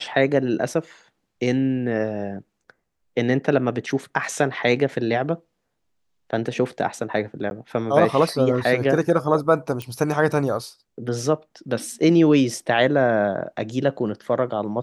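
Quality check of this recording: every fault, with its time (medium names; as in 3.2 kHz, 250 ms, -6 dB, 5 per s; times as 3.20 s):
7.50–7.51 s: dropout 11 ms
9.82 s: pop -16 dBFS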